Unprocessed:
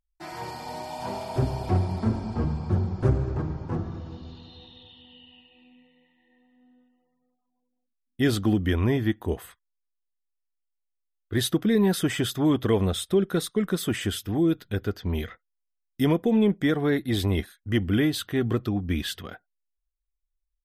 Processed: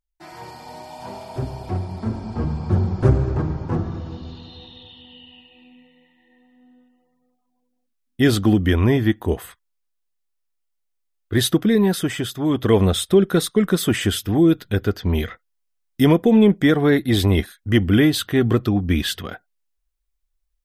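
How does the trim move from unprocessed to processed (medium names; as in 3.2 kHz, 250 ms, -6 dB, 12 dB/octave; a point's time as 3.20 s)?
1.89 s -2 dB
2.87 s +6.5 dB
11.53 s +6.5 dB
12.39 s -0.5 dB
12.76 s +7.5 dB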